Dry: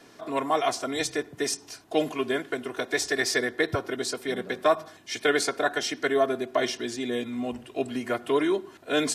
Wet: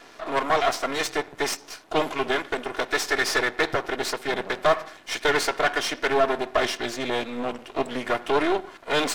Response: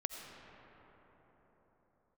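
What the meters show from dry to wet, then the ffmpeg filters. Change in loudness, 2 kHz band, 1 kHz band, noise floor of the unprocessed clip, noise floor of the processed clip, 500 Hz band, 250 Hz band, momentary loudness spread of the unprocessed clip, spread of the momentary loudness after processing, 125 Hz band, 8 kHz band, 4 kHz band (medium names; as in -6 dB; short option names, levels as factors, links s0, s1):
+2.5 dB, +4.0 dB, +5.0 dB, -52 dBFS, -48 dBFS, +1.5 dB, -1.5 dB, 7 LU, 6 LU, +0.5 dB, -0.5 dB, +3.0 dB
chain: -filter_complex "[0:a]aeval=exprs='max(val(0),0)':c=same,asplit=2[s0][s1];[s1]highpass=f=720:p=1,volume=5.62,asoftclip=type=tanh:threshold=0.282[s2];[s0][s2]amix=inputs=2:normalize=0,lowpass=f=3000:p=1,volume=0.501,volume=1.41"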